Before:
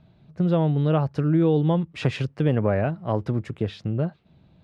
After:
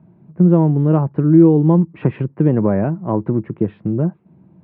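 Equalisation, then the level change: air absorption 90 m; speaker cabinet 140–2300 Hz, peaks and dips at 190 Hz +6 dB, 340 Hz +8 dB, 970 Hz +8 dB; low shelf 460 Hz +10.5 dB; -2.0 dB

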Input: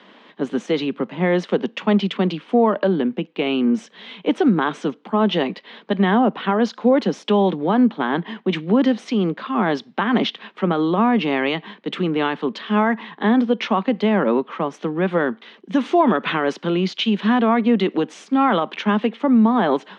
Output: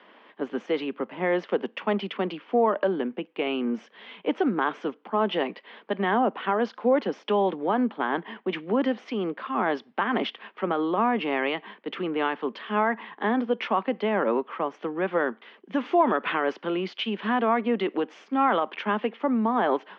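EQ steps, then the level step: air absorption 230 m; bell 150 Hz -14.5 dB 1.5 oct; bell 3900 Hz -7.5 dB 0.23 oct; -2.0 dB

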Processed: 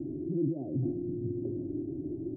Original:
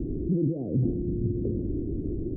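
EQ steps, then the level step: HPF 100 Hz 6 dB/oct; low shelf 140 Hz -8.5 dB; fixed phaser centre 310 Hz, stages 8; 0.0 dB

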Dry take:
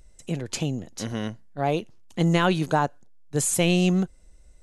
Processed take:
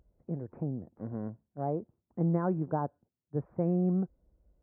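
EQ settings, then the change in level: Gaussian blur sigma 8.3 samples; HPF 55 Hz; -6.5 dB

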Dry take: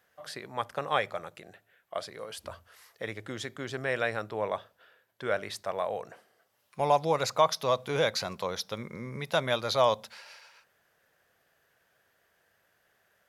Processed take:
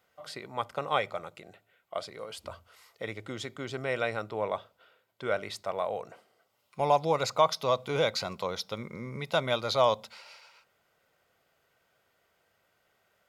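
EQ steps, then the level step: Butterworth band-stop 1700 Hz, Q 6.5; bell 11000 Hz -6 dB 0.53 oct; notch 5900 Hz, Q 18; 0.0 dB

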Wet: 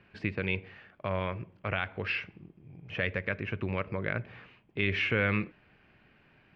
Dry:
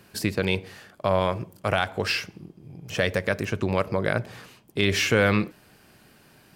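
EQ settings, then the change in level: low shelf 88 Hz +7.5 dB; dynamic EQ 750 Hz, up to -5 dB, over -36 dBFS, Q 1.8; ladder low-pass 2900 Hz, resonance 45%; 0.0 dB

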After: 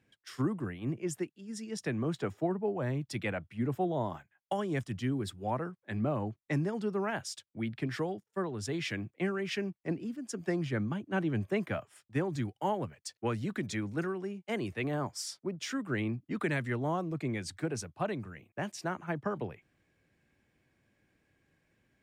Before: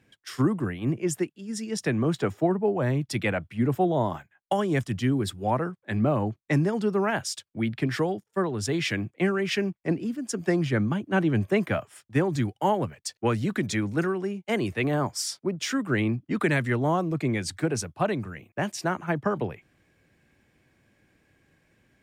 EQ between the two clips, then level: high shelf 12000 Hz -4.5 dB; -8.0 dB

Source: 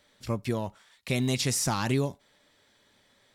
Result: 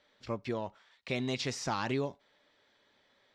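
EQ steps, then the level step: air absorption 190 m; tone controls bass -9 dB, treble +4 dB; -2.0 dB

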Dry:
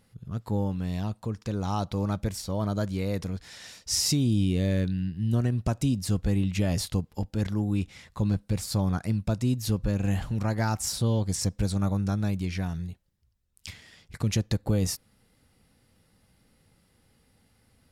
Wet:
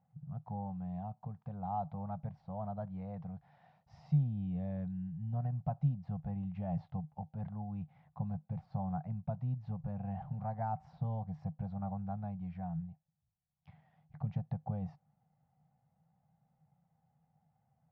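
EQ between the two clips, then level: double band-pass 340 Hz, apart 2.3 oct; air absorption 310 m; +2.0 dB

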